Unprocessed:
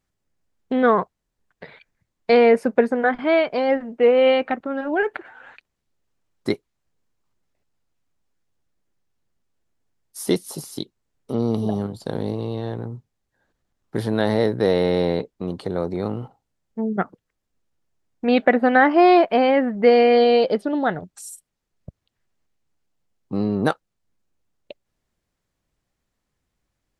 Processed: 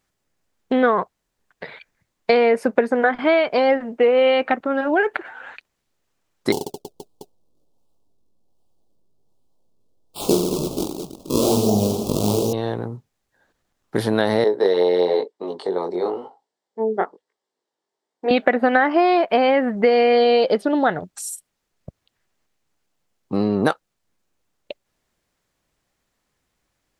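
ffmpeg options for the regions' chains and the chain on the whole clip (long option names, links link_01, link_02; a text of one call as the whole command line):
ffmpeg -i in.wav -filter_complex "[0:a]asettb=1/sr,asplit=3[link_01][link_02][link_03];[link_01]atrim=end=6.524[link_04];[link_02]atrim=start=6.52:end=12.53,asetpts=PTS-STARTPTS,afade=type=in:duration=0.004:curve=qsin,afade=type=out:start_time=6.006:duration=0.004:curve=qsin,acrusher=samples=33:mix=1:aa=0.000001:lfo=1:lforange=52.8:lforate=1.3,asuperstop=centerf=1800:order=4:qfactor=0.58,aecho=1:1:20|48|87.2|142.1|218.9|326.5|477.1|687.9:0.794|0.631|0.501|0.398|0.316|0.251|0.2|0.158,atrim=end_sample=265041[link_05];[link_03]atrim=start=12.526[link_06];[link_04][link_05]acrossfade=duration=0.004:curve1=hsin:curve2=qsin[link_07];[link_07][link_06]acrossfade=duration=0.004:curve1=qsin:curve2=hsin,asettb=1/sr,asplit=3[link_08][link_09][link_10];[link_08]atrim=end=14.444[link_11];[link_09]atrim=start=14.44:end=18.31,asetpts=PTS-STARTPTS,afade=type=in:duration=0.004:curve=qsin,afade=type=out:start_time=3.866:duration=0.004:curve=qsin,highpass=360,equalizer=frequency=410:width_type=q:width=4:gain=8,equalizer=frequency=890:width_type=q:width=4:gain=5,equalizer=frequency=1400:width_type=q:width=4:gain=-6,equalizer=frequency=2500:width_type=q:width=4:gain=-9,equalizer=frequency=6500:width_type=q:width=4:gain=-6,lowpass=frequency=8300:width=0.5412,lowpass=frequency=8300:width=1.3066,flanger=delay=18.5:depth=4.4:speed=1[link_12];[link_10]atrim=start=18.306[link_13];[link_11][link_12]acrossfade=duration=0.004:curve1=hsin:curve2=qsin[link_14];[link_14][link_13]acrossfade=duration=0.004:curve1=qsin:curve2=hsin,lowshelf=frequency=240:gain=-8.5,acompressor=threshold=-20dB:ratio=6,volume=7dB" out.wav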